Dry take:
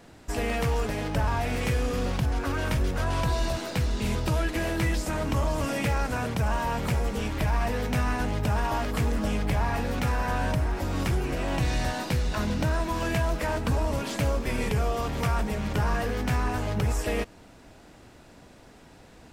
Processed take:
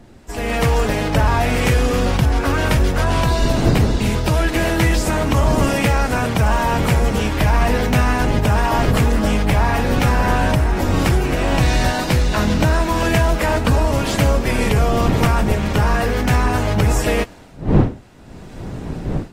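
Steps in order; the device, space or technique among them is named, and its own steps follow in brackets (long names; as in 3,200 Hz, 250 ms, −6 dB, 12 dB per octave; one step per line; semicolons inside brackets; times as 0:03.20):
smartphone video outdoors (wind on the microphone; automatic gain control gain up to 11.5 dB; level −1 dB; AAC 48 kbit/s 48,000 Hz)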